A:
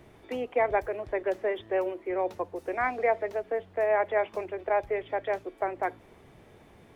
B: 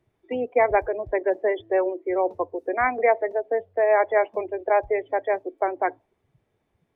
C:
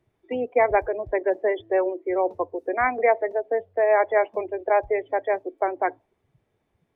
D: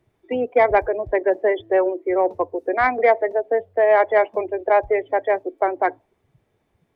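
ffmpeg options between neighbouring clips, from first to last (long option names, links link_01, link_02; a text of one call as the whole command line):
ffmpeg -i in.wav -af "afftdn=noise_reduction=25:noise_floor=-36,volume=6dB" out.wav
ffmpeg -i in.wav -af anull out.wav
ffmpeg -i in.wav -af "acontrast=48,volume=-1.5dB" out.wav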